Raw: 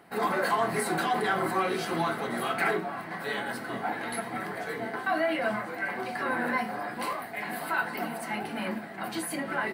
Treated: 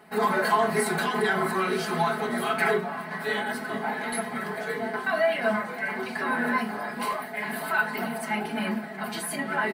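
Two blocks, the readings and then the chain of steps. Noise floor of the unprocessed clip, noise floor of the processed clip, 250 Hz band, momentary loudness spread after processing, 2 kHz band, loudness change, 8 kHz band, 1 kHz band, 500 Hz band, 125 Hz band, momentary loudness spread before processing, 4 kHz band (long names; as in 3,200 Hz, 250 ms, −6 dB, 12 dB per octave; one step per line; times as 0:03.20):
−40 dBFS, −36 dBFS, +3.0 dB, 7 LU, +3.5 dB, +3.0 dB, +3.5 dB, +2.0 dB, +4.0 dB, +3.5 dB, 7 LU, +3.0 dB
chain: comb filter 4.7 ms, depth 96%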